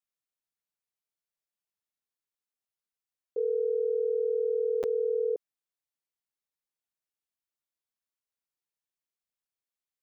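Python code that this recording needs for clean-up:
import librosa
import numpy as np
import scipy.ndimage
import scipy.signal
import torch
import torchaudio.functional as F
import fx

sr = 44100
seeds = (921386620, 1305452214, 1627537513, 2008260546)

y = fx.fix_interpolate(x, sr, at_s=(4.83,), length_ms=8.0)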